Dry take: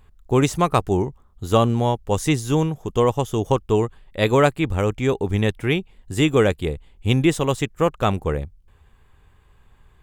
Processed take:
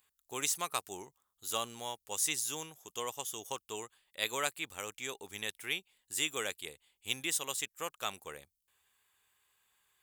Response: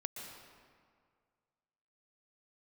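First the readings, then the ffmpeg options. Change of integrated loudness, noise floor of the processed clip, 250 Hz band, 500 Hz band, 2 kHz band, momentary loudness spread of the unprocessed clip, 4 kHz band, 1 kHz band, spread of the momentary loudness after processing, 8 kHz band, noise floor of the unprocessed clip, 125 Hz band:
−15.5 dB, −84 dBFS, −28.0 dB, −23.5 dB, −10.5 dB, 10 LU, −6.5 dB, −17.0 dB, 14 LU, 0.0 dB, −55 dBFS, −34.5 dB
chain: -af "aderivative"

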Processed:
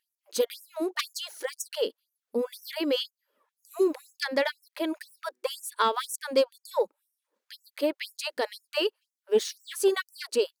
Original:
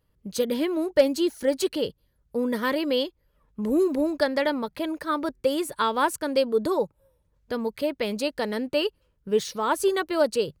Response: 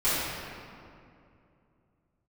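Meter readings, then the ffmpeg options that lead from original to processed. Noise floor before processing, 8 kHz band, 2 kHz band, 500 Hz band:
−70 dBFS, 0.0 dB, −3.0 dB, −4.0 dB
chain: -af "aeval=exprs='0.398*(cos(1*acos(clip(val(0)/0.398,-1,1)))-cos(1*PI/2))+0.178*(cos(2*acos(clip(val(0)/0.398,-1,1)))-cos(2*PI/2))+0.0398*(cos(4*acos(clip(val(0)/0.398,-1,1)))-cos(4*PI/2))':channel_layout=same,afftfilt=real='re*gte(b*sr/1024,210*pow(5500/210,0.5+0.5*sin(2*PI*2*pts/sr)))':imag='im*gte(b*sr/1024,210*pow(5500/210,0.5+0.5*sin(2*PI*2*pts/sr)))':win_size=1024:overlap=0.75"

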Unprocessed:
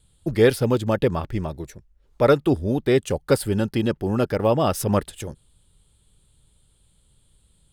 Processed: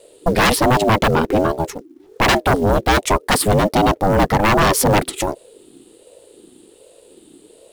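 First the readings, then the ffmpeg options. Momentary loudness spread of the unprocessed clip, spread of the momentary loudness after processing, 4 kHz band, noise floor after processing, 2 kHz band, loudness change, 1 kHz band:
14 LU, 10 LU, +12.0 dB, −50 dBFS, +12.5 dB, +5.5 dB, +13.0 dB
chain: -af "acrusher=bits=7:mode=log:mix=0:aa=0.000001,aeval=exprs='0.596*sin(PI/2*5.01*val(0)/0.596)':channel_layout=same,aeval=exprs='val(0)*sin(2*PI*410*n/s+410*0.25/1.3*sin(2*PI*1.3*n/s))':channel_layout=same,volume=-2.5dB"

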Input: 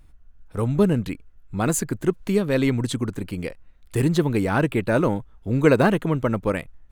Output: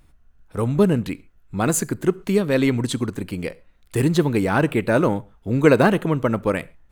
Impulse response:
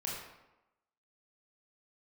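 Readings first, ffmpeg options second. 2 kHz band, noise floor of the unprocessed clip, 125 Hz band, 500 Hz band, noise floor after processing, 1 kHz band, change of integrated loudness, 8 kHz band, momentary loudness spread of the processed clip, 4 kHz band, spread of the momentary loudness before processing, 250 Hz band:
+2.5 dB, −50 dBFS, +0.5 dB, +2.5 dB, −55 dBFS, +2.5 dB, +2.0 dB, +2.5 dB, 13 LU, +2.5 dB, 12 LU, +2.0 dB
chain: -filter_complex "[0:a]lowshelf=frequency=73:gain=-8.5,asplit=2[link_01][link_02];[1:a]atrim=start_sample=2205,afade=type=out:start_time=0.19:duration=0.01,atrim=end_sample=8820,highshelf=frequency=9400:gain=7.5[link_03];[link_02][link_03]afir=irnorm=-1:irlink=0,volume=-21dB[link_04];[link_01][link_04]amix=inputs=2:normalize=0,volume=2dB"

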